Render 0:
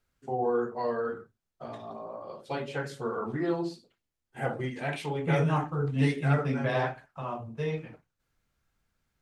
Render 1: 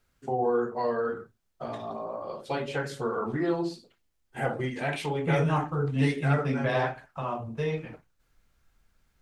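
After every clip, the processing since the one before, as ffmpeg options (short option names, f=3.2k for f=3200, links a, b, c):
-filter_complex "[0:a]asubboost=boost=2:cutoff=61,asplit=2[a][b];[b]acompressor=threshold=-38dB:ratio=6,volume=0dB[c];[a][c]amix=inputs=2:normalize=0"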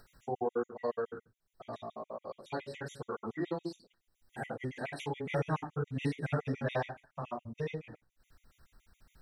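-af "acompressor=mode=upward:threshold=-41dB:ratio=2.5,afftfilt=real='re*gt(sin(2*PI*7.1*pts/sr)*(1-2*mod(floor(b*sr/1024/1900),2)),0)':imag='im*gt(sin(2*PI*7.1*pts/sr)*(1-2*mod(floor(b*sr/1024/1900),2)),0)':win_size=1024:overlap=0.75,volume=-5dB"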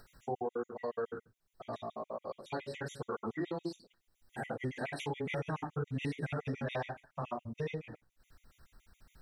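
-af "alimiter=level_in=4.5dB:limit=-24dB:level=0:latency=1:release=75,volume=-4.5dB,volume=1.5dB"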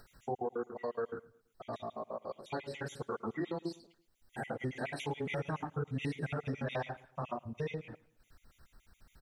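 -af "aecho=1:1:111|222|333:0.075|0.033|0.0145"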